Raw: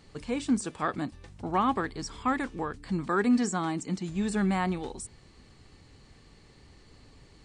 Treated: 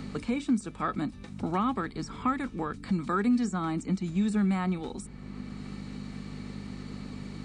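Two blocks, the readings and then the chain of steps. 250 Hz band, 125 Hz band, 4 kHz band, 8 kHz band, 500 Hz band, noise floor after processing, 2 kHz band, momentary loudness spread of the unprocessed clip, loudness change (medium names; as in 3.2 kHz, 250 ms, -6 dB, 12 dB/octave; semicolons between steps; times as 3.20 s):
+1.0 dB, +2.5 dB, -2.5 dB, -7.0 dB, -3.0 dB, -45 dBFS, -3.5 dB, 11 LU, -1.5 dB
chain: hum 50 Hz, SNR 17 dB; small resonant body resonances 210/1300/2300/3800 Hz, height 9 dB, ringing for 30 ms; three bands compressed up and down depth 70%; trim -5 dB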